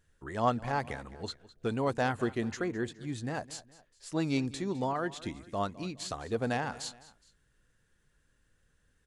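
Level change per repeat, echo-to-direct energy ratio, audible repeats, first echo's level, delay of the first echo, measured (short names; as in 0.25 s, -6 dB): -7.0 dB, -17.5 dB, 2, -18.5 dB, 0.208 s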